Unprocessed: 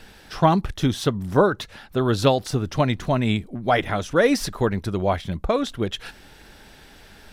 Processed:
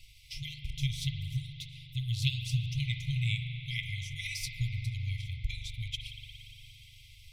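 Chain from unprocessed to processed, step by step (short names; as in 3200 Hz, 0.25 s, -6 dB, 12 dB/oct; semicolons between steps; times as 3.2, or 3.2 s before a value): transient shaper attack +4 dB, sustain -3 dB; FFT band-reject 140–2000 Hz; spring tank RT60 3.7 s, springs 41 ms, chirp 30 ms, DRR 3 dB; gain -7 dB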